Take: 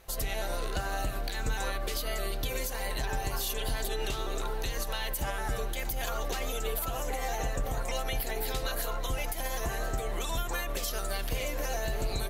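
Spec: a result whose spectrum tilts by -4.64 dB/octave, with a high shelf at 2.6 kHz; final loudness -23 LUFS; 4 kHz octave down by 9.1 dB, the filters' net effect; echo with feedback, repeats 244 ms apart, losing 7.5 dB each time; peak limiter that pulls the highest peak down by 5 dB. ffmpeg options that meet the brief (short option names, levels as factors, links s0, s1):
-af "highshelf=f=2600:g=-6.5,equalizer=f=4000:t=o:g=-6.5,alimiter=level_in=1.33:limit=0.0631:level=0:latency=1,volume=0.75,aecho=1:1:244|488|732|976|1220:0.422|0.177|0.0744|0.0312|0.0131,volume=4.22"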